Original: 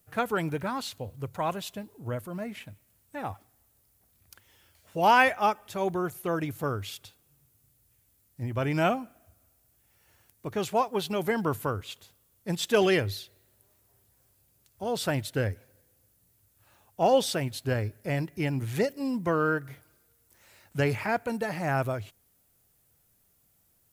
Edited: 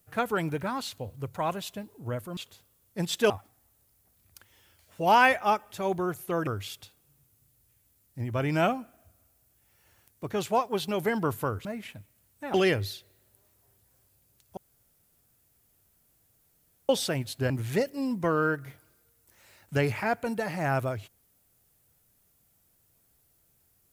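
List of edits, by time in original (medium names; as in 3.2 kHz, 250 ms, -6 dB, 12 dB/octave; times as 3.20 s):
2.37–3.26 s: swap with 11.87–12.80 s
6.43–6.69 s: delete
14.83–17.15 s: room tone
17.76–18.53 s: delete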